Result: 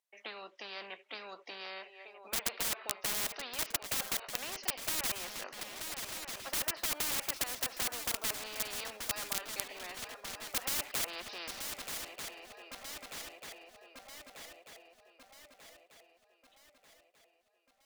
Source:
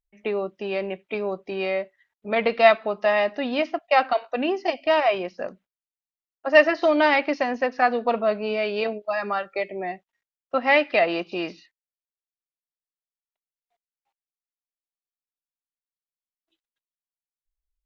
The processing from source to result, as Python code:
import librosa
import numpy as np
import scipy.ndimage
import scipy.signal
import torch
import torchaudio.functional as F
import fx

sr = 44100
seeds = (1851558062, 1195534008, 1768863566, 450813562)

y = fx.env_lowpass_down(x, sr, base_hz=2400.0, full_db=-15.5)
y = scipy.signal.sosfilt(scipy.signal.butter(4, 500.0, 'highpass', fs=sr, output='sos'), y)
y = fx.dynamic_eq(y, sr, hz=690.0, q=0.77, threshold_db=-32.0, ratio=4.0, max_db=5)
y = (np.mod(10.0 ** (14.0 / 20.0) * y + 1.0, 2.0) - 1.0) / 10.0 ** (14.0 / 20.0)
y = fx.echo_swing(y, sr, ms=1240, ratio=3, feedback_pct=46, wet_db=-22.5)
y = fx.spectral_comp(y, sr, ratio=4.0)
y = F.gain(torch.from_numpy(y), 5.0).numpy()